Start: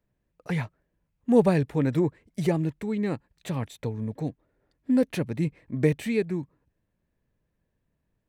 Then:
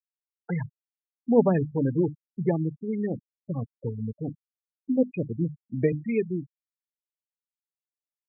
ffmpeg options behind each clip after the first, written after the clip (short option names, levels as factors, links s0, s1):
-af "bandreject=f=50:t=h:w=6,bandreject=f=100:t=h:w=6,bandreject=f=150:t=h:w=6,bandreject=f=200:t=h:w=6,bandreject=f=250:t=h:w=6,bandreject=f=300:t=h:w=6,afftfilt=real='re*gte(hypot(re,im),0.0708)':imag='im*gte(hypot(re,im),0.0708)':win_size=1024:overlap=0.75"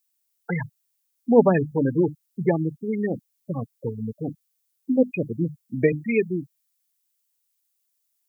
-af "lowshelf=f=100:g=-11.5,crystalizer=i=5:c=0,volume=1.68"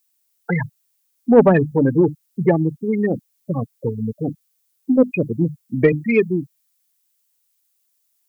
-af "acontrast=57"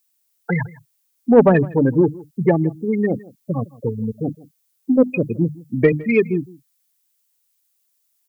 -af "aecho=1:1:161:0.0841"